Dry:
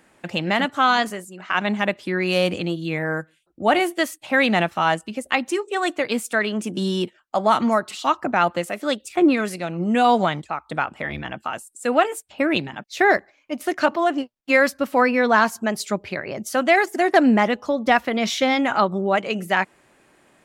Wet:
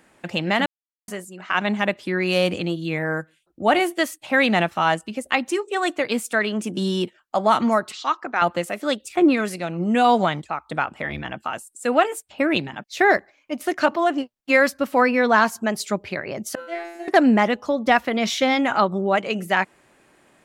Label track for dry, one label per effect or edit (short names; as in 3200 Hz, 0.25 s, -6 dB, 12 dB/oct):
0.660000	1.080000	mute
7.920000	8.420000	speaker cabinet 450–6400 Hz, peaks and dips at 610 Hz -9 dB, 870 Hz -4 dB, 2800 Hz -5 dB
16.550000	17.080000	resonator 170 Hz, decay 0.75 s, mix 100%